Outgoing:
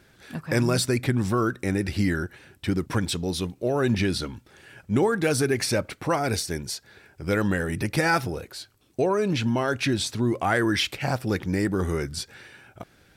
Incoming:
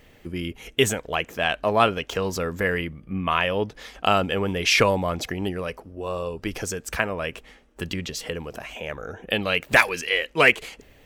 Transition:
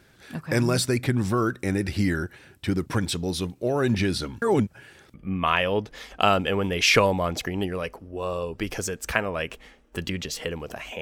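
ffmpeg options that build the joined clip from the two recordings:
ffmpeg -i cue0.wav -i cue1.wav -filter_complex "[0:a]apad=whole_dur=11.01,atrim=end=11.01,asplit=2[link_01][link_02];[link_01]atrim=end=4.422[link_03];[link_02]atrim=start=4.418:end=5.142,asetpts=PTS-STARTPTS,areverse[link_04];[1:a]atrim=start=2.978:end=8.85[link_05];[link_03][link_04]acrossfade=duration=0.004:curve1=hsin:curve2=hsin[link_06];[link_06][link_05]acrossfade=duration=0.004:curve1=hsin:curve2=hsin" out.wav

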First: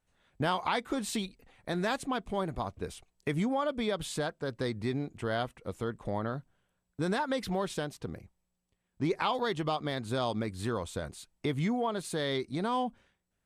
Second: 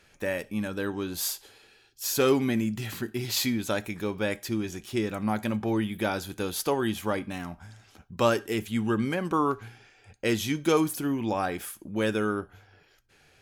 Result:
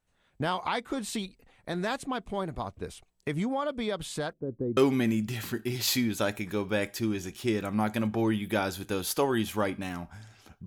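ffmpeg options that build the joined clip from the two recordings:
ffmpeg -i cue0.wav -i cue1.wav -filter_complex "[0:a]asettb=1/sr,asplit=3[link_01][link_02][link_03];[link_01]atrim=end=4.334[link_04];[link_02]atrim=start=4.33:end=4.77,asetpts=PTS-STARTPTS,afade=type=in:duration=0.004:curve=qsin,afade=type=out:start_time=0.436:duration=0.004:curve=qsin,lowpass=frequency=360:width_type=q:width=1.6[link_05];[link_03]atrim=start=4.766[link_06];[link_04][link_05]acrossfade=duration=0.004:curve1=hsin:curve2=qsin[link_07];[link_07][link_06]acrossfade=duration=0.004:curve1=qsin:curve2=hsin,apad=whole_dur=10.66,atrim=end=10.66,atrim=end=4.772[link_08];[1:a]atrim=start=2.258:end=8.15[link_09];[link_08][link_09]acrossfade=duration=0.004:curve1=hsin:curve2=hsin" out.wav

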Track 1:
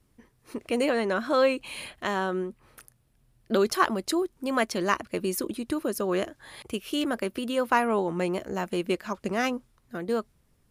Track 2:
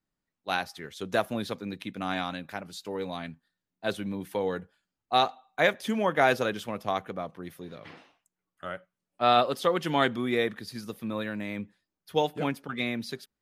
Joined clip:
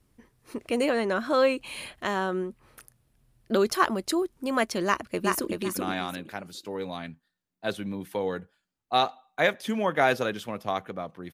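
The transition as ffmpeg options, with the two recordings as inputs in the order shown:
ffmpeg -i cue0.wav -i cue1.wav -filter_complex "[0:a]apad=whole_dur=11.33,atrim=end=11.33,atrim=end=5.532[link_01];[1:a]atrim=start=1.728:end=7.53[link_02];[link_01][link_02]acrossfade=duration=0.004:curve1=hsin:curve2=hsin,asplit=2[link_03][link_04];[link_04]afade=type=in:start_time=4.86:duration=0.01,afade=type=out:start_time=5.53:duration=0.01,aecho=0:1:380|760|1140:0.749894|0.149979|0.0299958[link_05];[link_03][link_05]amix=inputs=2:normalize=0" out.wav

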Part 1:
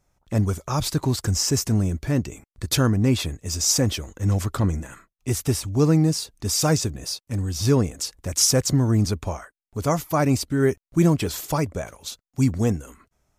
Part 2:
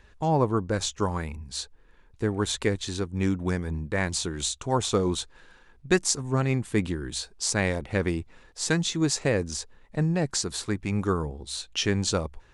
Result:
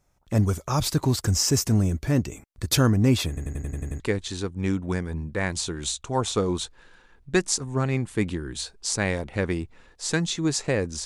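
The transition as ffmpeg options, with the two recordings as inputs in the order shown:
ffmpeg -i cue0.wav -i cue1.wav -filter_complex "[0:a]apad=whole_dur=11.05,atrim=end=11.05,asplit=8[link_01][link_02][link_03][link_04][link_05][link_06][link_07][link_08];[link_01]atrim=end=3.372[link_09];[link_02]atrim=start=3.278:end=3.372[link_10];[link_03]atrim=start=3.278:end=3.372[link_11];[link_04]atrim=start=3.278:end=3.372[link_12];[link_05]atrim=start=3.278:end=3.372[link_13];[link_06]atrim=start=3.278:end=3.372[link_14];[link_07]atrim=start=3.278:end=3.372[link_15];[link_08]atrim=start=3.278:end=3.372[link_16];[1:a]atrim=start=2.568:end=9.62[link_17];[link_09][link_10]acrossfade=duration=0.004:curve1=hsin:curve2=hsin[link_18];[link_18][link_11]acrossfade=duration=0.004:curve1=hsin:curve2=hsin[link_19];[link_19][link_12]acrossfade=duration=0.004:curve1=hsin:curve2=hsin[link_20];[link_20][link_13]acrossfade=duration=0.004:curve1=hsin:curve2=hsin[link_21];[link_21][link_14]acrossfade=duration=0.004:curve1=hsin:curve2=hsin[link_22];[link_22][link_15]acrossfade=duration=0.004:curve1=hsin:curve2=hsin[link_23];[link_23][link_16]acrossfade=duration=0.004:curve1=hsin:curve2=hsin[link_24];[link_24][link_17]acrossfade=duration=0.004:curve1=hsin:curve2=hsin" out.wav

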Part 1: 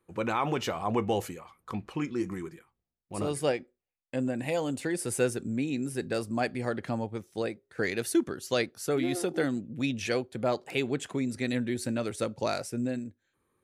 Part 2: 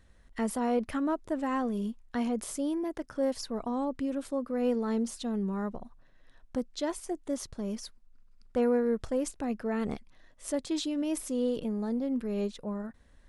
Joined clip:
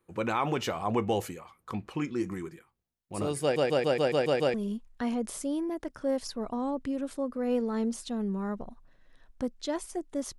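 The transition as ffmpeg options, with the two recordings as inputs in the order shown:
ffmpeg -i cue0.wav -i cue1.wav -filter_complex "[0:a]apad=whole_dur=10.38,atrim=end=10.38,asplit=8[link_01][link_02][link_03][link_04][link_05][link_06][link_07][link_08];[link_01]atrim=end=3.562[link_09];[link_02]atrim=start=3.418:end=3.562[link_10];[link_03]atrim=start=3.418:end=3.562[link_11];[link_04]atrim=start=3.418:end=3.562[link_12];[link_05]atrim=start=3.418:end=3.562[link_13];[link_06]atrim=start=3.418:end=3.562[link_14];[link_07]atrim=start=3.418:end=3.562[link_15];[link_08]atrim=start=3.418:end=3.562[link_16];[1:a]atrim=start=1.678:end=7.52[link_17];[link_09][link_10]acrossfade=duration=0.004:curve1=hsin:curve2=hsin[link_18];[link_18][link_11]acrossfade=duration=0.004:curve1=hsin:curve2=hsin[link_19];[link_19][link_12]acrossfade=duration=0.004:curve1=hsin:curve2=hsin[link_20];[link_20][link_13]acrossfade=duration=0.004:curve1=hsin:curve2=hsin[link_21];[link_21][link_14]acrossfade=duration=0.004:curve1=hsin:curve2=hsin[link_22];[link_22][link_15]acrossfade=duration=0.004:curve1=hsin:curve2=hsin[link_23];[link_23][link_16]acrossfade=duration=0.004:curve1=hsin:curve2=hsin[link_24];[link_24][link_17]acrossfade=duration=0.004:curve1=hsin:curve2=hsin" out.wav

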